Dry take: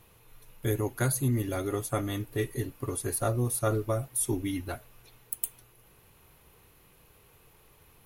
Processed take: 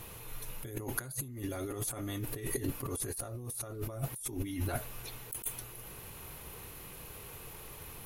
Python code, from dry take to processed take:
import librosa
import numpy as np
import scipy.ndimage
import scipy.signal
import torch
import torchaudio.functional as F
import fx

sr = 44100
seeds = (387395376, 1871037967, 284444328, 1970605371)

y = fx.peak_eq(x, sr, hz=10000.0, db=3.5, octaves=1.6)
y = fx.over_compress(y, sr, threshold_db=-40.0, ratio=-1.0)
y = y * 10.0 ** (1.5 / 20.0)